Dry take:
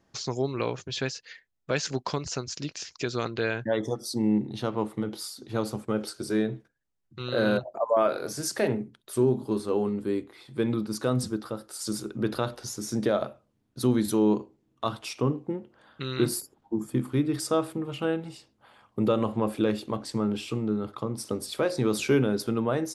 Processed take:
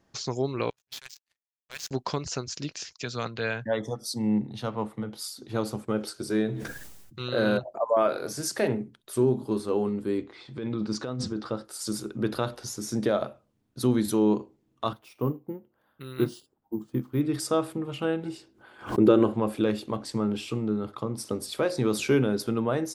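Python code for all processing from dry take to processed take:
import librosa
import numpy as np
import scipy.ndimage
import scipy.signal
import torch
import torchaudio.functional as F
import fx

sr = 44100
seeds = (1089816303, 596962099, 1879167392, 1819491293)

y = fx.chain(x, sr, fx.tone_stack(knobs='10-0-10'),
    fx.clip_hard(threshold_db=-28.0),
    fx.power_curve(exponent=3.0), at=(0.7, 1.91))
y = fx.chain(y, sr, fx.peak_eq(hz=350.0, db=-9.0, octaves=0.46),
    fx.band_widen(depth_pct=40), at=(2.93, 5.34))
y = fx.chain(y, sr, fx.high_shelf(hz=5300.0, db=8.0),
    fx.sustainer(db_per_s=34.0), at=(6.46, 7.28))
y = fx.chain(y, sr, fx.lowpass(hz=6600.0, slope=24),
    fx.over_compress(threshold_db=-30.0, ratio=-1.0), at=(10.18, 11.65))
y = fx.chain(y, sr, fx.high_shelf(hz=2700.0, db=-8.5),
    fx.resample_bad(factor=3, down='none', up='hold'),
    fx.upward_expand(threshold_db=-41.0, expansion=1.5), at=(14.93, 17.21))
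y = fx.chain(y, sr, fx.small_body(hz=(350.0, 1500.0), ring_ms=35, db=13),
    fx.pre_swell(db_per_s=150.0), at=(18.23, 19.34))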